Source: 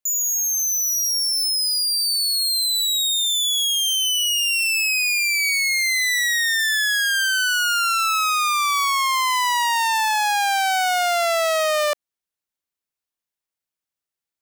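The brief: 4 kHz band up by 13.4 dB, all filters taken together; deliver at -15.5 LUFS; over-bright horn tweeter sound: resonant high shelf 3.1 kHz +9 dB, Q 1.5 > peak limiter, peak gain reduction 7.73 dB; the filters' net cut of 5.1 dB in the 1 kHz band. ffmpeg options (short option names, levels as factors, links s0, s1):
-af "equalizer=f=1000:t=o:g=-6,highshelf=f=3100:t=q:w=1.5:g=9,equalizer=f=4000:t=o:g=5.5,volume=0.708,alimiter=limit=0.282:level=0:latency=1"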